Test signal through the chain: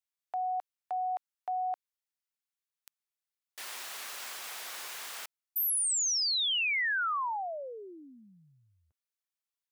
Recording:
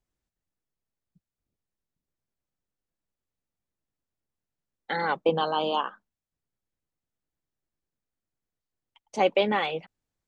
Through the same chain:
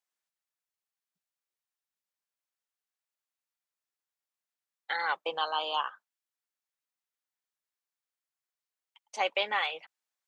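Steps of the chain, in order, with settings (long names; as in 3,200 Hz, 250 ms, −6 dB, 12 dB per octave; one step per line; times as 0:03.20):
high-pass filter 980 Hz 12 dB per octave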